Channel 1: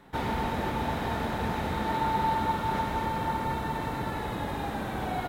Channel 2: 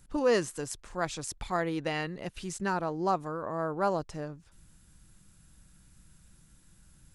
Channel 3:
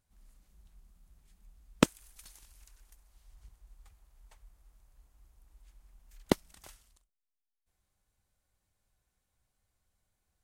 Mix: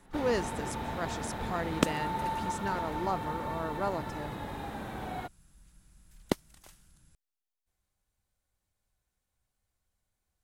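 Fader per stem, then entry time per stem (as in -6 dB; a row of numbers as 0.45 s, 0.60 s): -6.5 dB, -4.5 dB, -2.5 dB; 0.00 s, 0.00 s, 0.00 s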